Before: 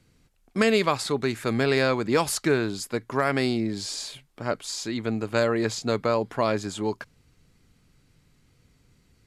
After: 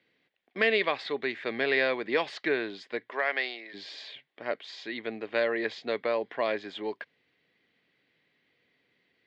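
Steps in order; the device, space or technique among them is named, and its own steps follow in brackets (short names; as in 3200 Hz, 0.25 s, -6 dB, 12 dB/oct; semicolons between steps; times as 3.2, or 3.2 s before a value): phone earpiece (speaker cabinet 420–3600 Hz, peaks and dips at 910 Hz -5 dB, 1300 Hz -9 dB, 1900 Hz +8 dB, 3400 Hz +4 dB); 3.09–3.73 HPF 410 Hz -> 890 Hz 12 dB/oct; gain -2 dB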